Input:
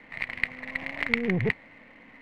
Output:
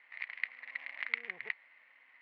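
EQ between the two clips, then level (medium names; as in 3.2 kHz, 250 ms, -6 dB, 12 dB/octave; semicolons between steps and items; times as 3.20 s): high-pass 1.4 kHz 12 dB/octave; distance through air 220 m; -5.5 dB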